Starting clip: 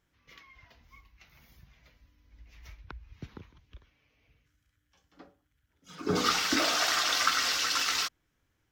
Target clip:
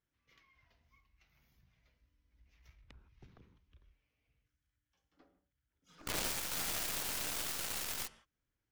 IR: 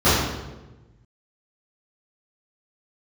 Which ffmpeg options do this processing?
-filter_complex "[0:a]aeval=exprs='(mod(16.8*val(0)+1,2)-1)/16.8':c=same,asplit=2[a][b];[1:a]atrim=start_sample=2205,atrim=end_sample=3969,asetrate=22491,aresample=44100[c];[b][c]afir=irnorm=-1:irlink=0,volume=-36dB[d];[a][d]amix=inputs=2:normalize=0,aeval=exprs='0.0891*(cos(1*acos(clip(val(0)/0.0891,-1,1)))-cos(1*PI/2))+0.0355*(cos(3*acos(clip(val(0)/0.0891,-1,1)))-cos(3*PI/2))+0.00447*(cos(4*acos(clip(val(0)/0.0891,-1,1)))-cos(4*PI/2))':c=same"

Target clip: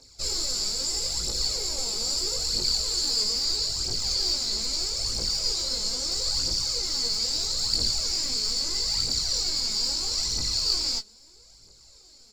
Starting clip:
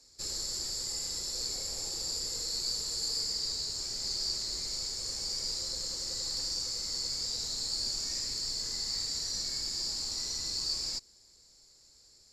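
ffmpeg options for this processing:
-filter_complex "[0:a]bandreject=f=1.8k:w=5.5,asplit=2[a][b];[b]adynamicsmooth=sensitivity=3:basefreq=7.9k,volume=0.5dB[c];[a][c]amix=inputs=2:normalize=0,aphaser=in_gain=1:out_gain=1:delay=4.9:decay=0.63:speed=0.77:type=triangular,asplit=2[d][e];[e]adelay=19,volume=-5dB[f];[d][f]amix=inputs=2:normalize=0"

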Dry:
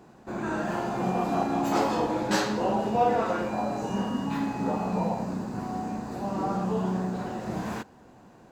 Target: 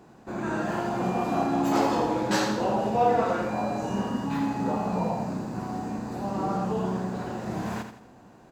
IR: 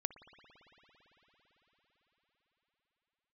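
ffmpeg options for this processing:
-af "aecho=1:1:83|166|249|332:0.376|0.15|0.0601|0.0241"

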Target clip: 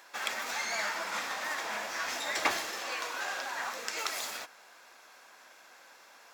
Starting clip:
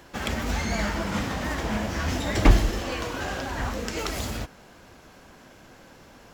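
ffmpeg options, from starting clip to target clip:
-af "highpass=880,bandreject=f=3k:w=12,volume=-1dB"

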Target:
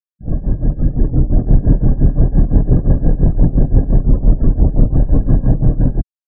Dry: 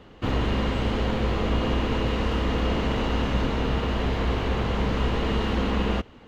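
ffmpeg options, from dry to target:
-af "crystalizer=i=1:c=0,afftfilt=real='re*gte(hypot(re,im),0.0501)':imag='im*gte(hypot(re,im),0.0501)':win_size=1024:overlap=0.75,dynaudnorm=f=390:g=5:m=9dB,lowpass=1.2k,lowshelf=f=390:g=10.5,acontrast=25,asetrate=25476,aresample=44100,atempo=1.73107,tremolo=f=5.8:d=0.86,aemphasis=mode=reproduction:type=50fm,volume=-1.5dB"

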